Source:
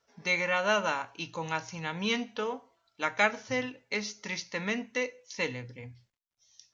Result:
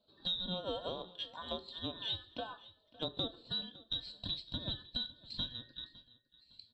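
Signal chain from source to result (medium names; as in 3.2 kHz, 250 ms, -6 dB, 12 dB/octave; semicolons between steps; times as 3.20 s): every band turned upside down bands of 2 kHz; FFT filter 350 Hz 0 dB, 700 Hz -4 dB, 1.9 kHz -29 dB, 3.9 kHz +3 dB, 5.8 kHz -30 dB; compression 4:1, threshold -42 dBFS, peak gain reduction 16.5 dB; on a send: feedback delay 558 ms, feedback 31%, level -20 dB; on the sum: trim +5 dB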